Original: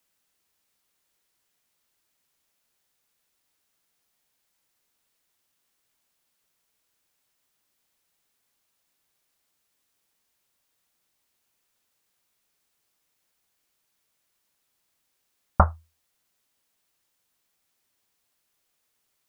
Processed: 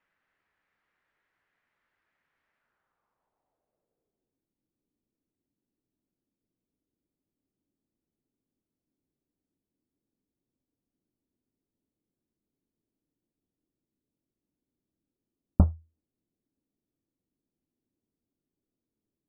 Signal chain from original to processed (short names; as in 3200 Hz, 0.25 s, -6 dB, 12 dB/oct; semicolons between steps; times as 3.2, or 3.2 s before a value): low-pass sweep 1800 Hz -> 290 Hz, 2.54–4.49